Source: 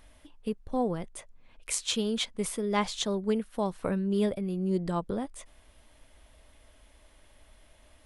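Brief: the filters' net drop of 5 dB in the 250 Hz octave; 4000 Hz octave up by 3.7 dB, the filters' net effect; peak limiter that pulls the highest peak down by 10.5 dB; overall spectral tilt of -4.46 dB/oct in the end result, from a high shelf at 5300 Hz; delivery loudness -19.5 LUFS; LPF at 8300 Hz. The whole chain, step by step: LPF 8300 Hz; bell 250 Hz -7 dB; bell 4000 Hz +6 dB; high shelf 5300 Hz -3.5 dB; gain +16 dB; limiter -8.5 dBFS

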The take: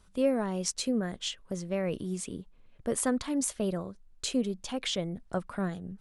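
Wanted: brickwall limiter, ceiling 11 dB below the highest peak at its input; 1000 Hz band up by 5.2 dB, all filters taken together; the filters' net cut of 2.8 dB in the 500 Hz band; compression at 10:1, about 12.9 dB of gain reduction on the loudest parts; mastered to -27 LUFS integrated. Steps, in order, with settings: bell 500 Hz -5.5 dB; bell 1000 Hz +9 dB; compressor 10:1, threshold -37 dBFS; gain +16.5 dB; limiter -16.5 dBFS

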